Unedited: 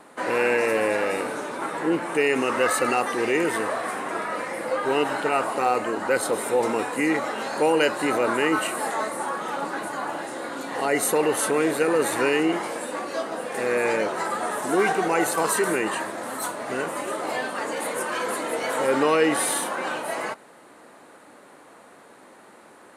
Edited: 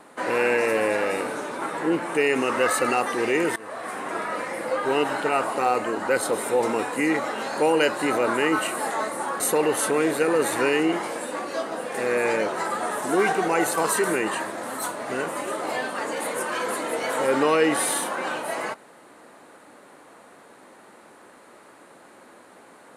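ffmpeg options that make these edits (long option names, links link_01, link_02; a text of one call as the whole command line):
ffmpeg -i in.wav -filter_complex "[0:a]asplit=3[link_01][link_02][link_03];[link_01]atrim=end=3.56,asetpts=PTS-STARTPTS,afade=type=out:start_time=3.556:duration=0.004:curve=hsin:silence=0.0891251[link_04];[link_02]atrim=start=3.56:end=9.402,asetpts=PTS-STARTPTS,afade=type=in:duration=0.76:curve=qsin:silence=0.0891251[link_05];[link_03]atrim=start=10.998[link_06];[link_04][link_05]concat=n=2:v=0:a=1[link_07];[link_07][link_06]acrossfade=duration=0.004:curve1=hsin:curve2=hsin" out.wav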